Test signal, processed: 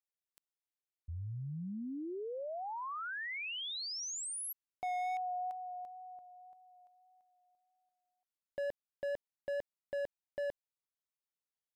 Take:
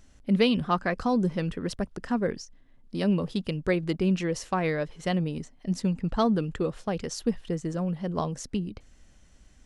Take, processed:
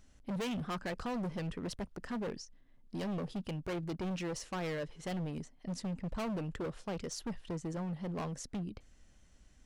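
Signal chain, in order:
hard clipping −28.5 dBFS
tape wow and flutter 18 cents
level −6 dB

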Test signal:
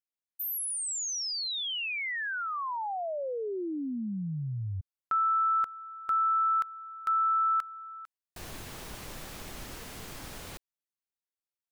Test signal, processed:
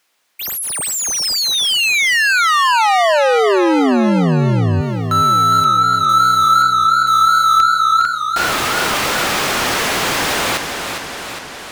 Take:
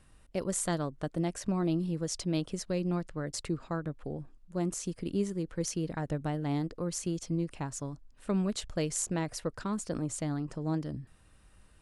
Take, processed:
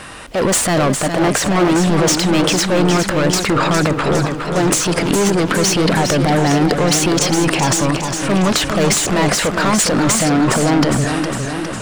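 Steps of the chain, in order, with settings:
mid-hump overdrive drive 36 dB, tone 3,300 Hz, clips at −15 dBFS
transient designer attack −3 dB, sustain +9 dB
feedback echo with a swinging delay time 410 ms, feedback 64%, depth 88 cents, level −7 dB
level +7.5 dB

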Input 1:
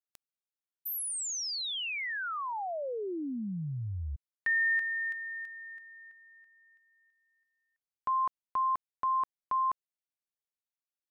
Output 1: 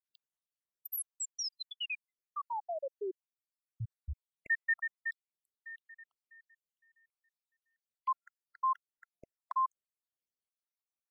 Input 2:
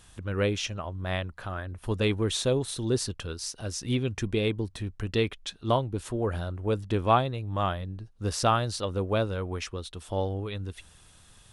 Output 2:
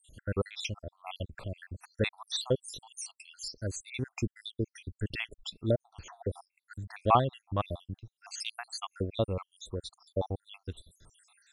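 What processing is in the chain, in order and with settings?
time-frequency cells dropped at random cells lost 77%

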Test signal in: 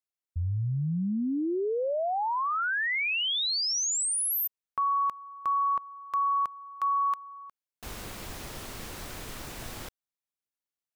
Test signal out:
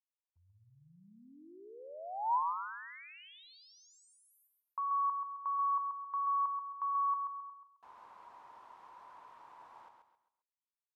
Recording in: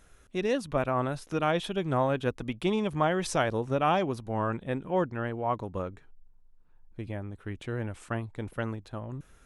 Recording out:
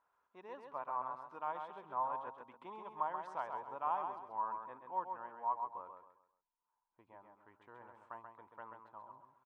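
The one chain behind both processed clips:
resonant band-pass 970 Hz, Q 9.1
on a send: repeating echo 133 ms, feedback 34%, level −6 dB

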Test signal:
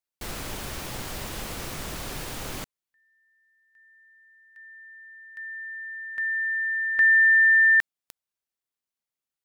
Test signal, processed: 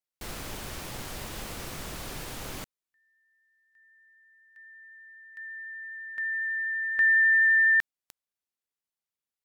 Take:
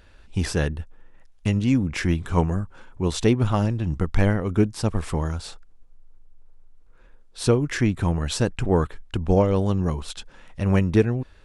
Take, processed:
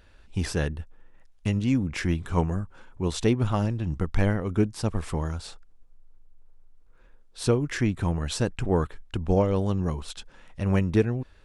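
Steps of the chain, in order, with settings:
pitch vibrato 12 Hz 7.7 cents
level −3.5 dB

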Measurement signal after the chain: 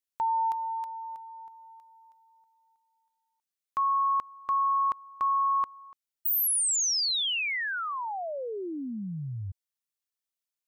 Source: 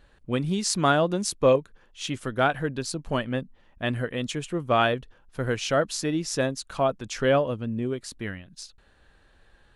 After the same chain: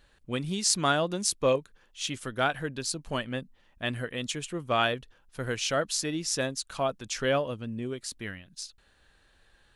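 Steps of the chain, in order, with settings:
high-shelf EQ 2,100 Hz +9 dB
level −6 dB

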